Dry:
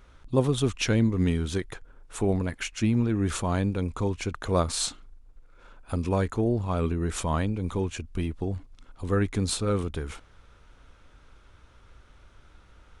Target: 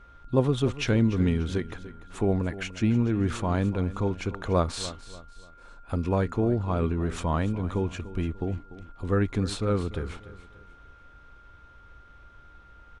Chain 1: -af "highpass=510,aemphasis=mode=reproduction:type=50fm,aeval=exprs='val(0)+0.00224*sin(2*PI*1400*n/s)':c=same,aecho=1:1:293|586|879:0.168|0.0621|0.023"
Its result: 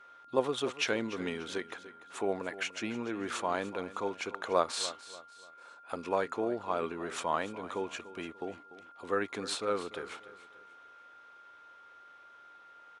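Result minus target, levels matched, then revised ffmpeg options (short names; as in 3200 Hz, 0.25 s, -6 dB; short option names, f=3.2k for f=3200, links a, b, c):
500 Hz band +3.0 dB
-af "aemphasis=mode=reproduction:type=50fm,aeval=exprs='val(0)+0.00224*sin(2*PI*1400*n/s)':c=same,aecho=1:1:293|586|879:0.168|0.0621|0.023"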